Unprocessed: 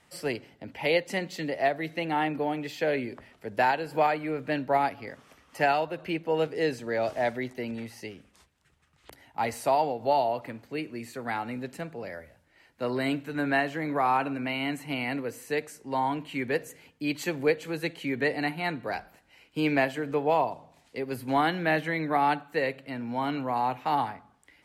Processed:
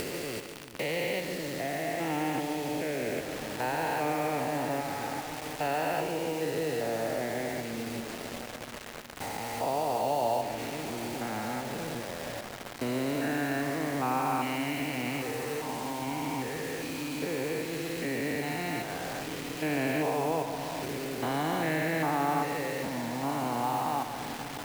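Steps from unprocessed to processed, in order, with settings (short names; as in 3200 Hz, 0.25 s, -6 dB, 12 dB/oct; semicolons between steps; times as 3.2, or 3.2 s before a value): stepped spectrum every 0.4 s; diffused feedback echo 1.233 s, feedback 52%, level -14.5 dB; bit-crush 7-bit; upward compressor, threshold -31 dBFS; split-band echo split 300 Hz, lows 0.365 s, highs 0.143 s, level -9 dB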